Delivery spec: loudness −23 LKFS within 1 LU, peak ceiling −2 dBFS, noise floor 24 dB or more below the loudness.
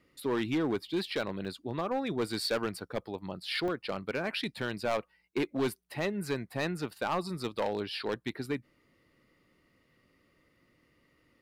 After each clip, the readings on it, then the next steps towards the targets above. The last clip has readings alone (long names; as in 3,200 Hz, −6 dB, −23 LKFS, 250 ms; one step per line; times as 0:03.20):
share of clipped samples 1.4%; peaks flattened at −24.5 dBFS; number of dropouts 2; longest dropout 2.3 ms; integrated loudness −34.0 LKFS; sample peak −24.5 dBFS; target loudness −23.0 LKFS
→ clipped peaks rebuilt −24.5 dBFS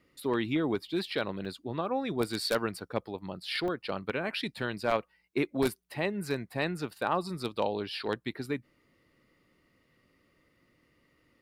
share of clipped samples 0.0%; number of dropouts 2; longest dropout 2.3 ms
→ repair the gap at 0:01.45/0:03.68, 2.3 ms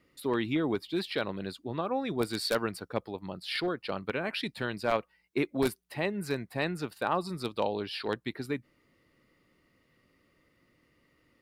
number of dropouts 0; integrated loudness −33.0 LKFS; sample peak −15.5 dBFS; target loudness −23.0 LKFS
→ level +10 dB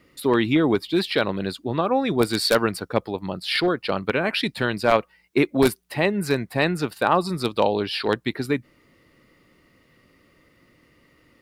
integrated loudness −23.0 LKFS; sample peak −5.5 dBFS; background noise floor −60 dBFS